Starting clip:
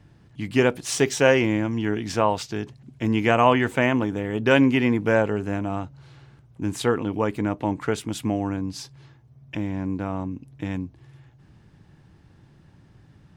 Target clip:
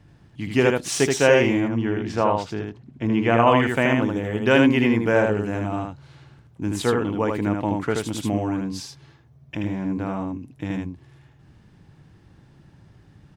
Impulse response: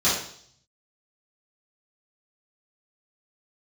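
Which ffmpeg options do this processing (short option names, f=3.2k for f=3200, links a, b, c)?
-filter_complex "[0:a]asettb=1/sr,asplit=3[a][b][c];[a]atrim=end=1.604[d];[b]atrim=start=1.6:end=3.47,asetpts=PTS-STARTPTS,afade=t=in:d=0.004:c=qsin,afade=t=out:st=1.866:d=0.004:c=qsin,lowpass=f=2.2k:p=1[e];[c]atrim=start=3.466[f];[d][e]acrossfade=d=0.004:c1=hsin:c2=qsin[g];[g][f]acrossfade=d=0.004:c1=qsin:c2=hsin,asplit=2[h][i];[i]aecho=0:1:78:0.668[j];[h][j]amix=inputs=2:normalize=0"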